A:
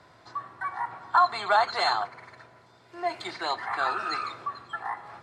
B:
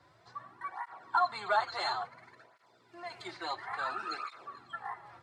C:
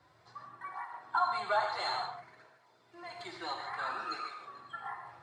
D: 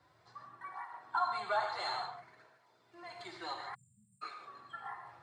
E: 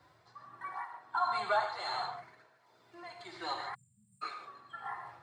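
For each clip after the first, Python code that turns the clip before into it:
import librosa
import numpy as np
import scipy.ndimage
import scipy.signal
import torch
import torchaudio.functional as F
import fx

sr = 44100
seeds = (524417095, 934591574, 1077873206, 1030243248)

y1 = fx.flanger_cancel(x, sr, hz=0.58, depth_ms=4.9)
y1 = y1 * 10.0 ** (-5.0 / 20.0)
y2 = fx.rev_gated(y1, sr, seeds[0], gate_ms=190, shape='flat', drr_db=3.0)
y2 = y2 * 10.0 ** (-2.5 / 20.0)
y3 = fx.spec_erase(y2, sr, start_s=3.75, length_s=0.47, low_hz=230.0, high_hz=7100.0)
y3 = y3 * 10.0 ** (-3.0 / 20.0)
y4 = y3 * (1.0 - 0.5 / 2.0 + 0.5 / 2.0 * np.cos(2.0 * np.pi * 1.4 * (np.arange(len(y3)) / sr)))
y4 = y4 * 10.0 ** (4.5 / 20.0)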